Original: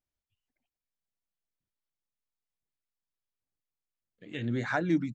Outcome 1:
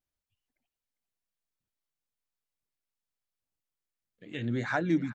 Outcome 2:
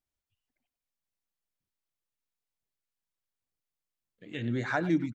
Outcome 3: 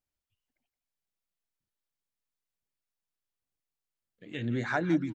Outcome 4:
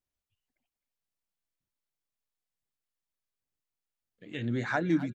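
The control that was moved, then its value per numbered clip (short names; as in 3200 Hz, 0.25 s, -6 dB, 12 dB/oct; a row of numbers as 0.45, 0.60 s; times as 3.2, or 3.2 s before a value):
speakerphone echo, time: 0.4, 0.1, 0.17, 0.26 s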